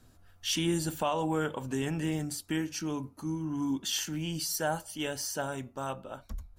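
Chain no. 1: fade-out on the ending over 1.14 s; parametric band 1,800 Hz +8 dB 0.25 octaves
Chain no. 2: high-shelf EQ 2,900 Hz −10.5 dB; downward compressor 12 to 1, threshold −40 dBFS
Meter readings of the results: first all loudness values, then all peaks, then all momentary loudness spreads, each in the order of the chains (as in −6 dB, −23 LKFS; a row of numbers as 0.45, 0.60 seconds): −32.5, −44.5 LKFS; −18.5, −29.5 dBFS; 7, 3 LU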